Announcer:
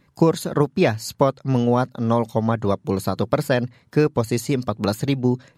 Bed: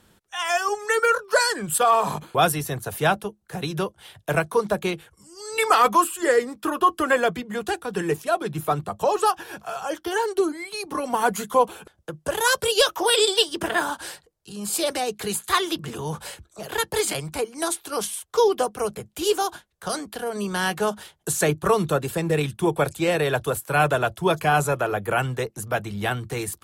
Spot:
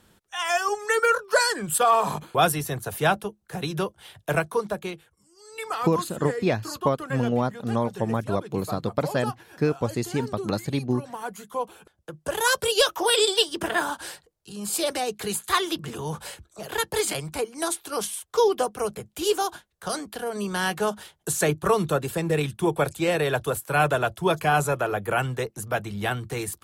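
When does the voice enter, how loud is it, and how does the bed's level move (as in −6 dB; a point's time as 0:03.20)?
5.65 s, −5.5 dB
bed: 0:04.32 −1 dB
0:05.32 −12.5 dB
0:11.40 −12.5 dB
0:12.40 −1.5 dB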